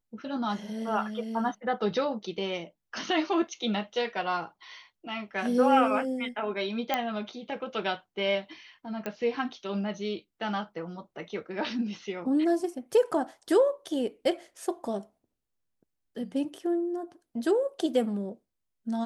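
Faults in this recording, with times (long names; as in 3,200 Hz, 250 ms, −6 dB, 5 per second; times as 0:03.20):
0:06.94: click −12 dBFS
0:09.06: click −19 dBFS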